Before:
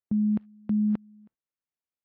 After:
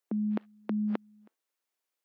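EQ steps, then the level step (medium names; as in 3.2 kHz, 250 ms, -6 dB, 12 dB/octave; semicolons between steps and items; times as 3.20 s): high-pass 320 Hz 24 dB/octave; +8.5 dB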